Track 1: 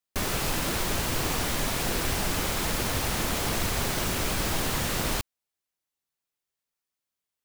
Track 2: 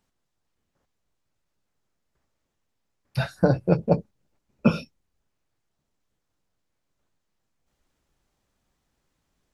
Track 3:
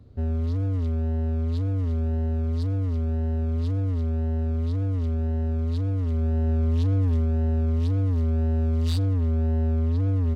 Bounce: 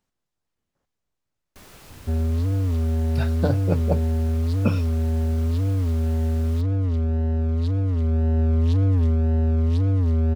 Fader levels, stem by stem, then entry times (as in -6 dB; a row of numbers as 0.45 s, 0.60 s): -18.5 dB, -4.0 dB, +3.0 dB; 1.40 s, 0.00 s, 1.90 s